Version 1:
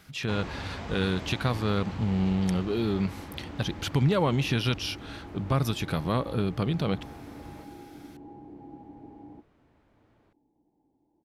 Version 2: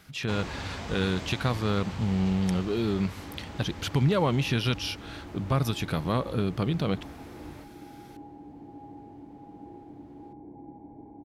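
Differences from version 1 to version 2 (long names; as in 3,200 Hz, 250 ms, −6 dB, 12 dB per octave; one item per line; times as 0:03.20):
first sound: add high-shelf EQ 4,300 Hz +10 dB
second sound: entry +1.95 s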